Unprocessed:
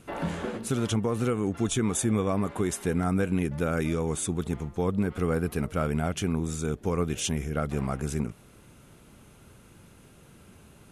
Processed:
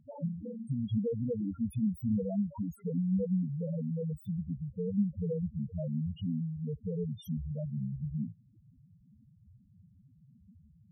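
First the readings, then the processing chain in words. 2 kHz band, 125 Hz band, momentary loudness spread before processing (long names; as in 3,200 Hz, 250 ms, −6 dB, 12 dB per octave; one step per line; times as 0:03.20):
below −35 dB, −4.0 dB, 5 LU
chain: phase distortion by the signal itself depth 0.096 ms
notch comb filter 380 Hz
spectral peaks only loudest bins 2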